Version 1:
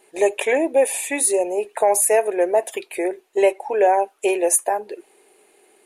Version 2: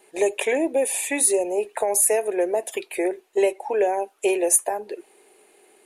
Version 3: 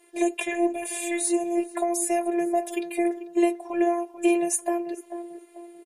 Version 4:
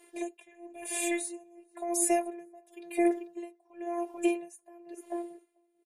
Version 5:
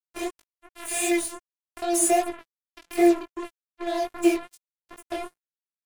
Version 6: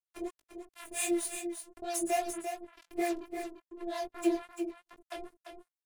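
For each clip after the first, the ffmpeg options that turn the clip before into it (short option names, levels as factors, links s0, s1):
-filter_complex "[0:a]acrossover=split=410|3000[s0][s1][s2];[s1]acompressor=threshold=0.0631:ratio=6[s3];[s0][s3][s2]amix=inputs=3:normalize=0"
-filter_complex "[0:a]afftfilt=real='hypot(re,im)*cos(PI*b)':imag='0':win_size=512:overlap=0.75,asplit=2[s0][s1];[s1]adelay=441,lowpass=f=1200:p=1,volume=0.282,asplit=2[s2][s3];[s3]adelay=441,lowpass=f=1200:p=1,volume=0.43,asplit=2[s4][s5];[s5]adelay=441,lowpass=f=1200:p=1,volume=0.43,asplit=2[s6][s7];[s7]adelay=441,lowpass=f=1200:p=1,volume=0.43[s8];[s0][s2][s4][s6][s8]amix=inputs=5:normalize=0,acrossover=split=9000[s9][s10];[s10]acompressor=threshold=0.0141:ratio=4:attack=1:release=60[s11];[s9][s11]amix=inputs=2:normalize=0"
-af "aeval=exprs='val(0)*pow(10,-29*(0.5-0.5*cos(2*PI*0.97*n/s))/20)':c=same"
-af "acrusher=bits=5:mix=0:aa=0.5,flanger=delay=17:depth=5:speed=2.6,volume=2.82"
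-filter_complex "[0:a]acrossover=split=600[s0][s1];[s0]aeval=exprs='val(0)*(1-1/2+1/2*cos(2*PI*4.4*n/s))':c=same[s2];[s1]aeval=exprs='val(0)*(1-1/2-1/2*cos(2*PI*4.4*n/s))':c=same[s3];[s2][s3]amix=inputs=2:normalize=0,aecho=1:1:344:0.422,volume=0.596"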